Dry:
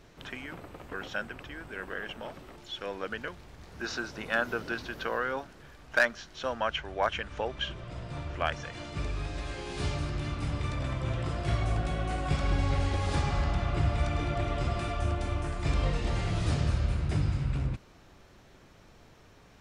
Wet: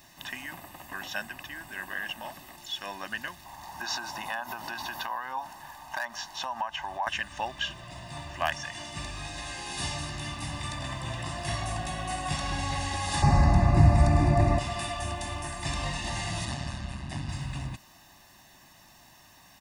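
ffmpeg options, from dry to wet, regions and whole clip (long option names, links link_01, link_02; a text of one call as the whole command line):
ffmpeg -i in.wav -filter_complex "[0:a]asettb=1/sr,asplit=3[link_01][link_02][link_03];[link_01]atrim=end=3.454[link_04];[link_02]atrim=start=3.45:end=7.07,asetpts=PTS-STARTPTS,afade=type=in:duration=0.004:curve=qsin,afade=type=out:start_time=3.616:duration=0.004:curve=qsin,equalizer=frequency=900:width_type=o:width=0.71:gain=14.5,acompressor=threshold=-33dB:ratio=5:attack=3.2:release=140:knee=1:detection=peak[link_05];[link_03]atrim=start=7.066[link_06];[link_04][link_05]acrossfade=duration=0.004:curve1=hsin:curve2=qsin[link_07];[link_07][link_06]acrossfade=duration=0.004:curve1=qsin:curve2=hsin,asettb=1/sr,asplit=3[link_08][link_09][link_10];[link_08]atrim=end=13.224[link_11];[link_09]atrim=start=13.22:end=14.59,asetpts=PTS-STARTPTS,afade=type=in:duration=0.004:curve=qsin,afade=type=out:start_time=1.366:duration=0.004:curve=qsin,acontrast=74,asuperstop=centerf=3200:order=4:qfactor=2.7,tiltshelf=frequency=750:gain=8.5[link_12];[link_10]atrim=start=14.586[link_13];[link_11][link_12]acrossfade=duration=0.004:curve1=hsin:curve2=qsin[link_14];[link_14][link_13]acrossfade=duration=0.004:curve1=qsin:curve2=hsin,asettb=1/sr,asplit=3[link_15][link_16][link_17];[link_15]atrim=end=16.454[link_18];[link_16]atrim=start=16.45:end=17.29,asetpts=PTS-STARTPTS,afade=type=in:duration=0.004:curve=qsin,afade=type=out:start_time=0.836:duration=0.004:curve=qsin,highshelf=frequency=7000:gain=-10.5,tremolo=f=130:d=0.667[link_19];[link_17]atrim=start=17.286[link_20];[link_18][link_19]acrossfade=duration=0.004:curve1=hsin:curve2=qsin[link_21];[link_21][link_20]acrossfade=duration=0.004:curve1=qsin:curve2=hsin,aemphasis=mode=production:type=bsi,aecho=1:1:1.1:0.9" out.wav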